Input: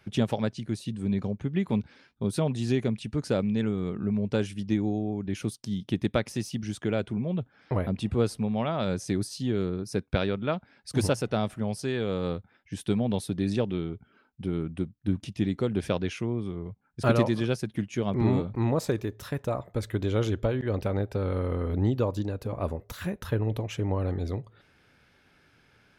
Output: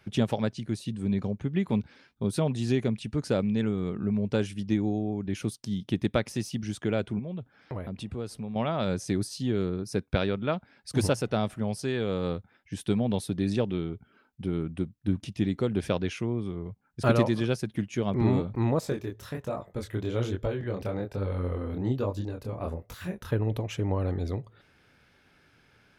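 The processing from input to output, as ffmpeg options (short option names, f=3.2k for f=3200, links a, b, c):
-filter_complex "[0:a]asettb=1/sr,asplit=3[a][b][c];[a]atrim=end=7.194[d];[b]atrim=start=7.19:end=8.56,asetpts=PTS-STARTPTS,afade=t=in:d=0.004:c=qsin,afade=t=out:st=1.366:d=0.004:c=qsin,acompressor=threshold=-38dB:ratio=2:attack=3.2:release=140:knee=1:detection=peak[e];[c]atrim=start=8.556[f];[d][e]acrossfade=d=0.004:c1=hsin:c2=qsin[g];[g][f]acrossfade=d=0.004:c1=qsin:c2=hsin,asettb=1/sr,asplit=3[h][i][j];[h]atrim=end=18.804[k];[i]atrim=start=18.8:end=23.31,asetpts=PTS-STARTPTS,afade=t=in:d=0.004:c=qsin,afade=t=out:st=4.506:d=0.004:c=qsin,flanger=delay=20:depth=7.5:speed=1.2[l];[j]atrim=start=23.306[m];[k][l]acrossfade=d=0.004:c1=hsin:c2=qsin[n];[n][m]acrossfade=d=0.004:c1=qsin:c2=hsin"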